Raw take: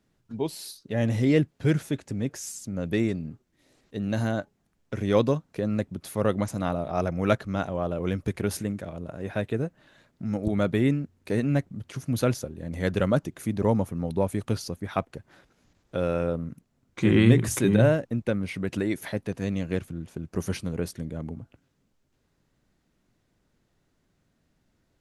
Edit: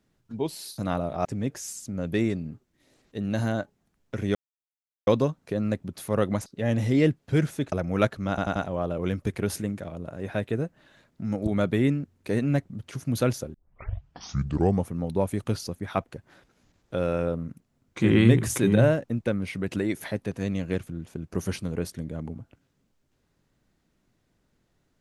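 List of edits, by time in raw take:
0.78–2.04 s: swap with 6.53–7.00 s
5.14 s: insert silence 0.72 s
7.57 s: stutter 0.09 s, 4 plays
12.55 s: tape start 1.35 s

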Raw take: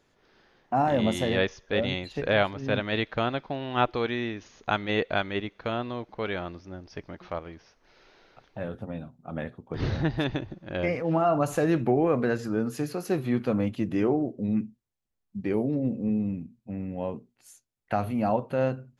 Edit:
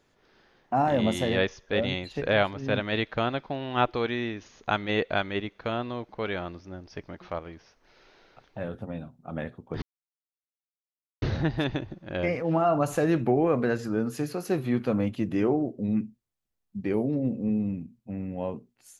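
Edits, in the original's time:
9.82 s: insert silence 1.40 s

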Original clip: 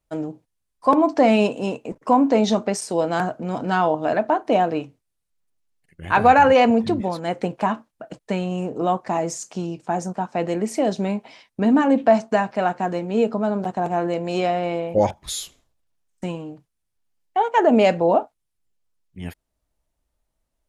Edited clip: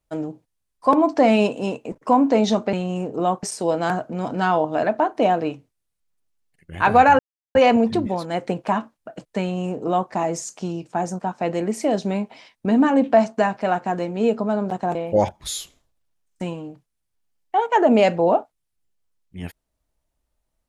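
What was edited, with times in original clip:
6.49 s: insert silence 0.36 s
8.35–9.05 s: copy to 2.73 s
13.89–14.77 s: delete

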